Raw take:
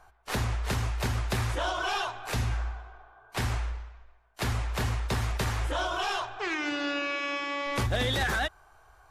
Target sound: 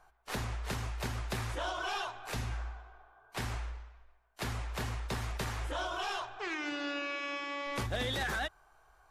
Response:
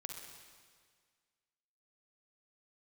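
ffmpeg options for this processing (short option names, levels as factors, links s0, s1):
-af "equalizer=f=85:w=3.2:g=-10.5,volume=0.501"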